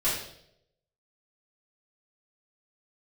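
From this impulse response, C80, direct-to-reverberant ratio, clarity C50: 6.5 dB, -11.0 dB, 3.0 dB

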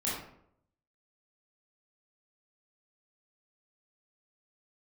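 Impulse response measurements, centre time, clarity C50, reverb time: 57 ms, 1.5 dB, 0.70 s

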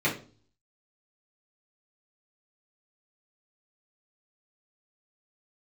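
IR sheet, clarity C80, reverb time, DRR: 15.0 dB, 0.40 s, -7.5 dB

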